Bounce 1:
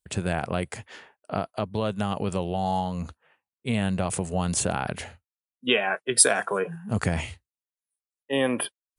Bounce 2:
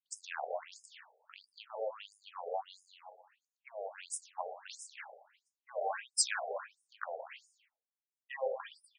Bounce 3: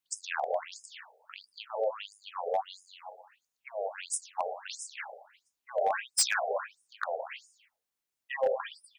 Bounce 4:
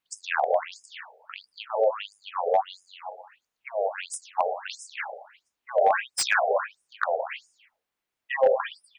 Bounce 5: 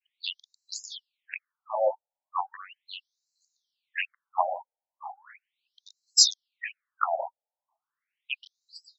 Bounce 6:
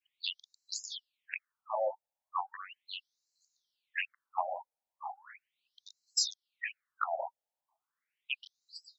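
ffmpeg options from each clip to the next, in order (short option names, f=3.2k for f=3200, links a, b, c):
-filter_complex "[0:a]flanger=delay=9.5:depth=7.8:regen=-66:speed=0.44:shape=sinusoidal,asplit=2[a][b];[b]aecho=0:1:118|236|354|472:0.398|0.155|0.0606|0.0236[c];[a][c]amix=inputs=2:normalize=0,afftfilt=real='re*between(b*sr/1024,570*pow(7100/570,0.5+0.5*sin(2*PI*1.5*pts/sr))/1.41,570*pow(7100/570,0.5+0.5*sin(2*PI*1.5*pts/sr))*1.41)':imag='im*between(b*sr/1024,570*pow(7100/570,0.5+0.5*sin(2*PI*1.5*pts/sr))/1.41,570*pow(7100/570,0.5+0.5*sin(2*PI*1.5*pts/sr))*1.41)':win_size=1024:overlap=0.75,volume=-2dB"
-af "asoftclip=type=hard:threshold=-27.5dB,volume=7.5dB"
-af "bass=f=250:g=-2,treble=f=4k:g=-11,volume=8dB"
-af "crystalizer=i=7:c=0,adynamicequalizer=threshold=0.0178:dfrequency=1600:dqfactor=1:tfrequency=1600:tqfactor=1:attack=5:release=100:ratio=0.375:range=2:mode=boostabove:tftype=bell,afftfilt=real='re*between(b*sr/1024,660*pow(5600/660,0.5+0.5*sin(2*PI*0.37*pts/sr))/1.41,660*pow(5600/660,0.5+0.5*sin(2*PI*0.37*pts/sr))*1.41)':imag='im*between(b*sr/1024,660*pow(5600/660,0.5+0.5*sin(2*PI*0.37*pts/sr))/1.41,660*pow(5600/660,0.5+0.5*sin(2*PI*0.37*pts/sr))*1.41)':win_size=1024:overlap=0.75,volume=-3.5dB"
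-af "acompressor=threshold=-29dB:ratio=3,volume=-1.5dB"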